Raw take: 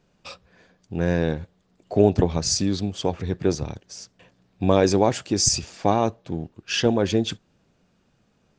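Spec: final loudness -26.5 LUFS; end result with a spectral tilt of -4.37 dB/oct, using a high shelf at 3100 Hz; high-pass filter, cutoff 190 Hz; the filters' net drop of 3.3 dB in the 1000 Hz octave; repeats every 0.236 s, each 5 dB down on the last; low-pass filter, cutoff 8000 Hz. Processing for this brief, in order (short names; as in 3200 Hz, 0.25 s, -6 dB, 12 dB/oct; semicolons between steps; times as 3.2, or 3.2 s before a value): HPF 190 Hz; LPF 8000 Hz; bell 1000 Hz -4.5 dB; high shelf 3100 Hz -3.5 dB; feedback echo 0.236 s, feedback 56%, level -5 dB; gain -2.5 dB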